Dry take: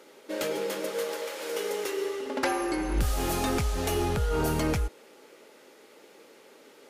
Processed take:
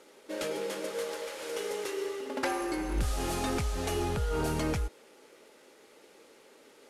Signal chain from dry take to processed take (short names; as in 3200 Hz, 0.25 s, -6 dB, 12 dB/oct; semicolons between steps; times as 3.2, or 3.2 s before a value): CVSD 64 kbps; gain -3.5 dB